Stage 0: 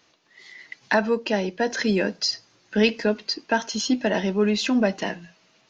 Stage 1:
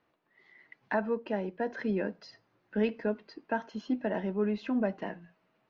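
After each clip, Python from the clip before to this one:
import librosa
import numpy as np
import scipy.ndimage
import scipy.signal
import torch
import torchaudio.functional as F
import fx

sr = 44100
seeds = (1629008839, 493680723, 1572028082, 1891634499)

y = scipy.signal.sosfilt(scipy.signal.butter(2, 1600.0, 'lowpass', fs=sr, output='sos'), x)
y = y * 10.0 ** (-8.5 / 20.0)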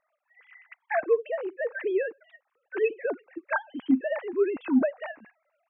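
y = fx.sine_speech(x, sr)
y = y * 10.0 ** (4.5 / 20.0)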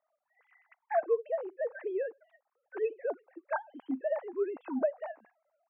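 y = fx.bandpass_q(x, sr, hz=700.0, q=1.6)
y = y * 10.0 ** (-1.0 / 20.0)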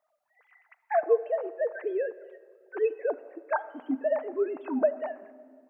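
y = fx.room_shoebox(x, sr, seeds[0], volume_m3=3200.0, walls='mixed', distance_m=0.46)
y = y * 10.0 ** (4.5 / 20.0)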